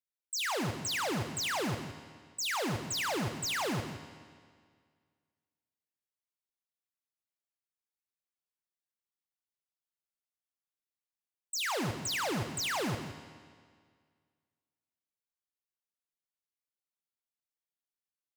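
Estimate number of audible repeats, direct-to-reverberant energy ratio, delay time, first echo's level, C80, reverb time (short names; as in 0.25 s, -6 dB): 1, 6.5 dB, 0.168 s, -12.0 dB, 8.0 dB, 1.9 s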